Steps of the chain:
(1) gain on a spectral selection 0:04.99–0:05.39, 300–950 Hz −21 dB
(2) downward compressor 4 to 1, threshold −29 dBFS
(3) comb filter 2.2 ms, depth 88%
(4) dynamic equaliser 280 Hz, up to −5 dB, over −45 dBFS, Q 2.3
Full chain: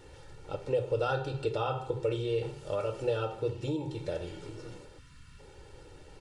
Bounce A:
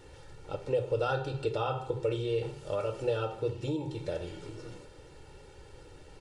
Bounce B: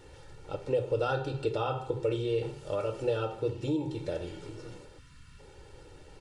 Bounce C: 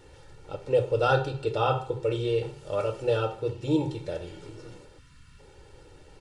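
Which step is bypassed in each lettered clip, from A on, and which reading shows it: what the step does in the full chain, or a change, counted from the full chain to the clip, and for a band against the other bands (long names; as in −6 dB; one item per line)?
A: 1, change in momentary loudness spread +2 LU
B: 4, change in momentary loudness spread −6 LU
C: 2, average gain reduction 2.0 dB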